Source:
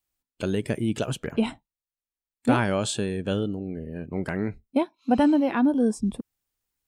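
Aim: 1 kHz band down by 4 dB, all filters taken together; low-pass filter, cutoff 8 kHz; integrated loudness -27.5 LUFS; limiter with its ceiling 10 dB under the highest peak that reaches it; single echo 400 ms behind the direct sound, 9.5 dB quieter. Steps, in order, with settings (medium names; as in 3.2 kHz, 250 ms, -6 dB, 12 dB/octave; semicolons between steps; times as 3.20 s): low-pass 8 kHz; peaking EQ 1 kHz -5.5 dB; peak limiter -20 dBFS; delay 400 ms -9.5 dB; trim +2.5 dB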